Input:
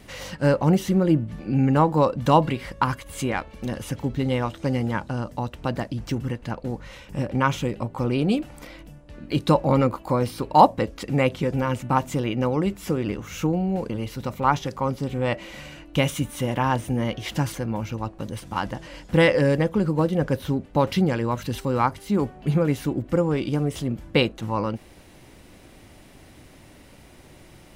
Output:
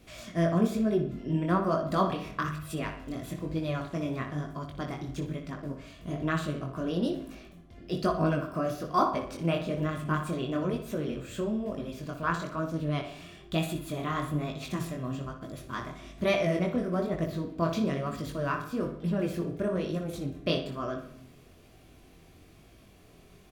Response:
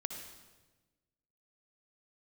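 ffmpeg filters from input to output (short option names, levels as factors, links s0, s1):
-filter_complex "[0:a]asplit=2[s0][s1];[s1]adelay=71,lowpass=f=4600:p=1,volume=0.398,asplit=2[s2][s3];[s3]adelay=71,lowpass=f=4600:p=1,volume=0.48,asplit=2[s4][s5];[s5]adelay=71,lowpass=f=4600:p=1,volume=0.48,asplit=2[s6][s7];[s7]adelay=71,lowpass=f=4600:p=1,volume=0.48,asplit=2[s8][s9];[s9]adelay=71,lowpass=f=4600:p=1,volume=0.48,asplit=2[s10][s11];[s11]adelay=71,lowpass=f=4600:p=1,volume=0.48[s12];[s0][s2][s4][s6][s8][s10][s12]amix=inputs=7:normalize=0,asetrate=52038,aresample=44100,asplit=2[s13][s14];[1:a]atrim=start_sample=2205,asetrate=52920,aresample=44100,lowshelf=f=470:g=10[s15];[s14][s15]afir=irnorm=-1:irlink=0,volume=0.237[s16];[s13][s16]amix=inputs=2:normalize=0,flanger=delay=18.5:depth=5.8:speed=1.1,asuperstop=centerf=880:order=4:qfactor=7.2,volume=0.422"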